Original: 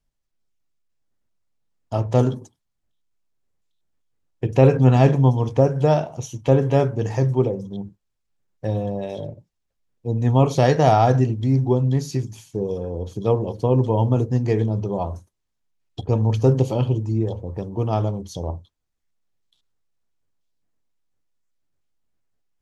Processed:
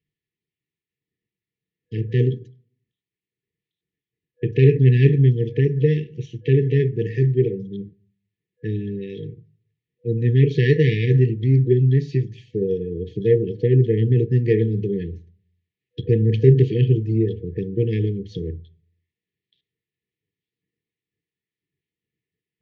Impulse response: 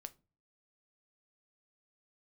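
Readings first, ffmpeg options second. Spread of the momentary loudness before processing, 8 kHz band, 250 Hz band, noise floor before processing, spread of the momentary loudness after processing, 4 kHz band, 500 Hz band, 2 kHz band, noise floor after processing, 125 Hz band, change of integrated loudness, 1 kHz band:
15 LU, no reading, 0.0 dB, -76 dBFS, 17 LU, -1.0 dB, 0.0 dB, +3.0 dB, under -85 dBFS, +2.0 dB, +1.0 dB, under -40 dB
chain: -filter_complex "[0:a]asplit=2[s0][s1];[1:a]atrim=start_sample=2205,asetrate=28665,aresample=44100,lowpass=3200[s2];[s1][s2]afir=irnorm=-1:irlink=0,volume=0.75[s3];[s0][s3]amix=inputs=2:normalize=0,aeval=exprs='1.19*(cos(1*acos(clip(val(0)/1.19,-1,1)))-cos(1*PI/2))+0.0596*(cos(2*acos(clip(val(0)/1.19,-1,1)))-cos(2*PI/2))+0.0106*(cos(6*acos(clip(val(0)/1.19,-1,1)))-cos(6*PI/2))+0.0596*(cos(8*acos(clip(val(0)/1.19,-1,1)))-cos(8*PI/2))':c=same,dynaudnorm=f=400:g=21:m=5.01,highpass=130,equalizer=f=140:t=q:w=4:g=4,equalizer=f=250:t=q:w=4:g=-9,equalizer=f=1400:t=q:w=4:g=8,lowpass=f=3800:w=0.5412,lowpass=f=3800:w=1.3066,afftfilt=real='re*(1-between(b*sr/4096,490,1700))':imag='im*(1-between(b*sr/4096,490,1700))':win_size=4096:overlap=0.75"

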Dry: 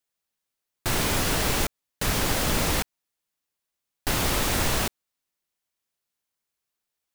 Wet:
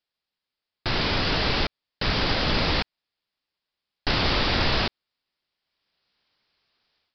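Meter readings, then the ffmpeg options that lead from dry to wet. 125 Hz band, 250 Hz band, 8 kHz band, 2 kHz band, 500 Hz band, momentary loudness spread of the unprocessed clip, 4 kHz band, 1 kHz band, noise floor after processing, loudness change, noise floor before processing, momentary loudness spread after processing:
+1.0 dB, +1.0 dB, -20.5 dB, +2.5 dB, +1.0 dB, 8 LU, +4.5 dB, +1.5 dB, under -85 dBFS, +1.0 dB, -85 dBFS, 8 LU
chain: -af "aemphasis=mode=production:type=50fm,dynaudnorm=f=700:g=3:m=5.96,aresample=11025,aresample=44100"

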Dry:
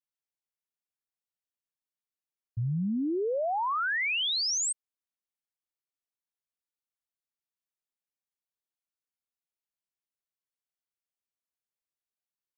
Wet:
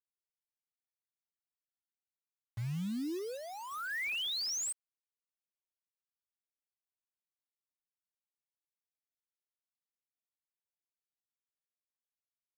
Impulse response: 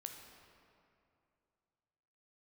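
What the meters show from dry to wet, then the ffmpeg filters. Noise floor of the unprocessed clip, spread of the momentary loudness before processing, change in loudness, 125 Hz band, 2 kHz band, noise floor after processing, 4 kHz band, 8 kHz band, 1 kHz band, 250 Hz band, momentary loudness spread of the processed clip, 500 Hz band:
under -85 dBFS, 8 LU, -8.0 dB, -7.0 dB, -8.0 dB, under -85 dBFS, -7.0 dB, -7.0 dB, -14.0 dB, -7.0 dB, 10 LU, -11.5 dB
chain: -filter_complex "[0:a]acrossover=split=400|1500[s0][s1][s2];[s1]acompressor=threshold=0.01:ratio=12[s3];[s0][s3][s2]amix=inputs=3:normalize=0,acrusher=bits=6:mix=0:aa=0.000001,volume=0.447"

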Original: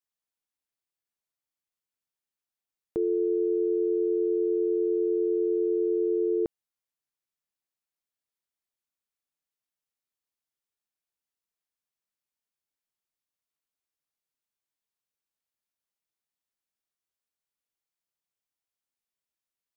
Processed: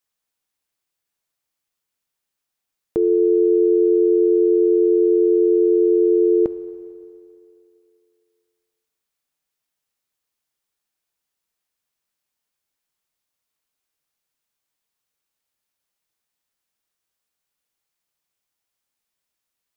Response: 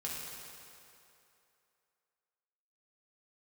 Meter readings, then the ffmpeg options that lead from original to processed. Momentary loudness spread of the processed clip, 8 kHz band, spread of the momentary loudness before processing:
6 LU, no reading, 3 LU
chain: -filter_complex "[0:a]asplit=2[s0][s1];[s1]equalizer=f=210:w=0.89:g=-11.5[s2];[1:a]atrim=start_sample=2205[s3];[s2][s3]afir=irnorm=-1:irlink=0,volume=0.316[s4];[s0][s4]amix=inputs=2:normalize=0,volume=2.51"

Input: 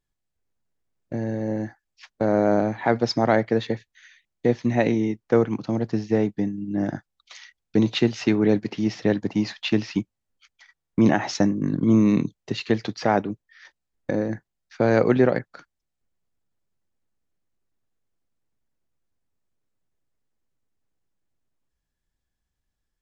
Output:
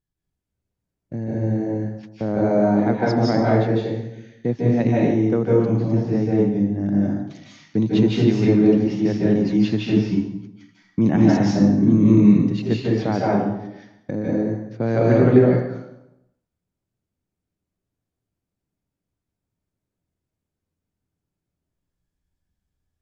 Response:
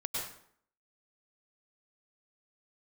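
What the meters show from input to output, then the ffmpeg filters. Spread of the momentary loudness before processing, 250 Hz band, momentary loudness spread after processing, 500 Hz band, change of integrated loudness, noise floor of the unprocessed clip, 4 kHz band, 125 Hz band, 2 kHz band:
11 LU, +5.5 dB, 15 LU, +2.5 dB, +4.0 dB, -81 dBFS, -3.0 dB, +7.5 dB, -2.0 dB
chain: -filter_complex "[0:a]equalizer=f=130:w=0.4:g=10.5[s0];[1:a]atrim=start_sample=2205,asetrate=29547,aresample=44100[s1];[s0][s1]afir=irnorm=-1:irlink=0,volume=0.376"

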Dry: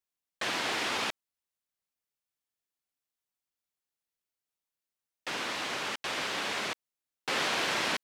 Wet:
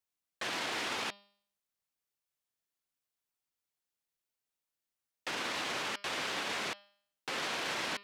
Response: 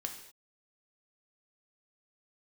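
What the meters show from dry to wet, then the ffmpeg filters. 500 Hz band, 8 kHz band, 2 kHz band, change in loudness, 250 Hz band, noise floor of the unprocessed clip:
-4.0 dB, -4.0 dB, -4.0 dB, -4.0 dB, -4.0 dB, under -85 dBFS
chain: -af "alimiter=level_in=1.41:limit=0.0631:level=0:latency=1:release=30,volume=0.708,bandreject=f=201.6:t=h:w=4,bandreject=f=403.2:t=h:w=4,bandreject=f=604.8:t=h:w=4,bandreject=f=806.4:t=h:w=4,bandreject=f=1008:t=h:w=4,bandreject=f=1209.6:t=h:w=4,bandreject=f=1411.2:t=h:w=4,bandreject=f=1612.8:t=h:w=4,bandreject=f=1814.4:t=h:w=4,bandreject=f=2016:t=h:w=4,bandreject=f=2217.6:t=h:w=4,bandreject=f=2419.2:t=h:w=4,bandreject=f=2620.8:t=h:w=4,bandreject=f=2822.4:t=h:w=4,bandreject=f=3024:t=h:w=4,bandreject=f=3225.6:t=h:w=4,bandreject=f=3427.2:t=h:w=4,bandreject=f=3628.8:t=h:w=4,bandreject=f=3830.4:t=h:w=4,bandreject=f=4032:t=h:w=4,bandreject=f=4233.6:t=h:w=4,bandreject=f=4435.2:t=h:w=4,bandreject=f=4636.8:t=h:w=4,bandreject=f=4838.4:t=h:w=4,bandreject=f=5040:t=h:w=4,bandreject=f=5241.6:t=h:w=4,bandreject=f=5443.2:t=h:w=4"

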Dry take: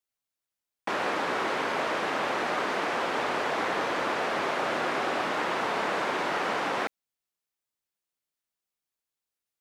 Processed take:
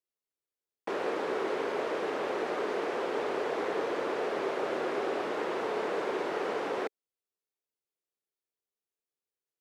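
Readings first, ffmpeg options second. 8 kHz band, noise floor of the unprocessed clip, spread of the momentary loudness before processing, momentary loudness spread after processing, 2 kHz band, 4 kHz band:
-9.0 dB, under -85 dBFS, 1 LU, 1 LU, -8.5 dB, -9.0 dB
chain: -af "equalizer=f=420:w=1.6:g=13.5,volume=0.355"

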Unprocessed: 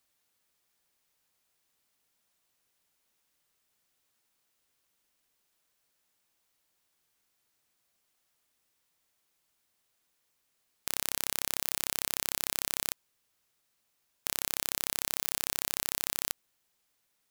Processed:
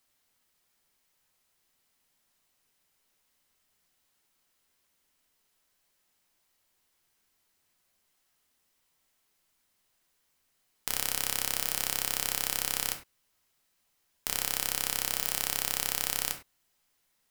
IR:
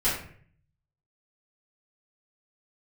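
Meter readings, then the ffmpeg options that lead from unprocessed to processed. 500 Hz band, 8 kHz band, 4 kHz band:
+1.5 dB, +2.0 dB, +2.5 dB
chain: -filter_complex "[0:a]asplit=2[s0][s1];[1:a]atrim=start_sample=2205,afade=t=out:st=0.16:d=0.01,atrim=end_sample=7497,asetrate=43659,aresample=44100[s2];[s1][s2]afir=irnorm=-1:irlink=0,volume=0.2[s3];[s0][s3]amix=inputs=2:normalize=0"

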